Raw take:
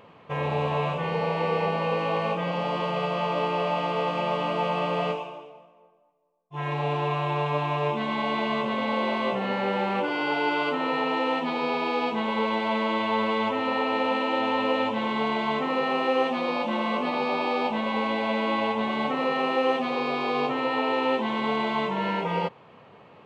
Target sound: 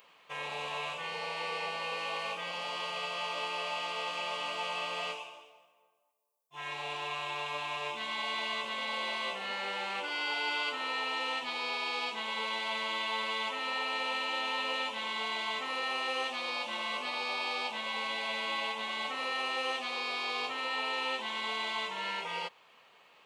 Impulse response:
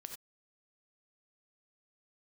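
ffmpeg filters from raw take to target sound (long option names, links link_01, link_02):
-af "aderivative,volume=7.5dB"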